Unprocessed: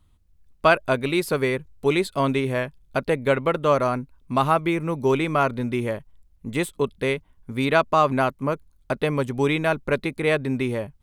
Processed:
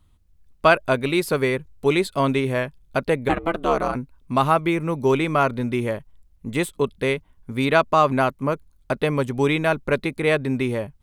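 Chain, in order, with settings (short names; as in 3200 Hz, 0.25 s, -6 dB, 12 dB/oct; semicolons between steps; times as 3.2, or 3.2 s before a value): 3.28–3.94 ring modulator 250 Hz -> 70 Hz; gain +1.5 dB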